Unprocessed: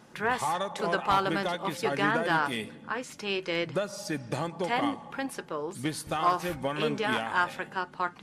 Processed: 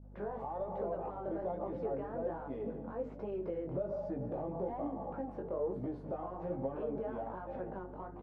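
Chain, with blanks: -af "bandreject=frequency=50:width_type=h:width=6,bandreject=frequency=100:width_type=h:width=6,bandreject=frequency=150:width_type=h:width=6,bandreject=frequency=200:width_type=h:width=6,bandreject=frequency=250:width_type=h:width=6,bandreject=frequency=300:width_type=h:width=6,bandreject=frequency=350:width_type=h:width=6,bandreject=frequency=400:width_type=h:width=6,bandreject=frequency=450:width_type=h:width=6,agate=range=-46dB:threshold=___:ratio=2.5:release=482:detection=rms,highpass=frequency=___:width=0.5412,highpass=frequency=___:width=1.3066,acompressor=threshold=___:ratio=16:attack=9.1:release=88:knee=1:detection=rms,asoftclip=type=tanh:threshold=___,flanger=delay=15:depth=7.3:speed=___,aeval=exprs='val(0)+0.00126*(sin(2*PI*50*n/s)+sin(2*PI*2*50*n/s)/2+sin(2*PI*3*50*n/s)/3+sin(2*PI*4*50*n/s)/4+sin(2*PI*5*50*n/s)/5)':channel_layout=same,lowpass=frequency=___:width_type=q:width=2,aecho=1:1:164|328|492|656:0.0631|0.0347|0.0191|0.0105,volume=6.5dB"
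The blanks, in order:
-45dB, 130, 130, -37dB, -37dB, 1.2, 610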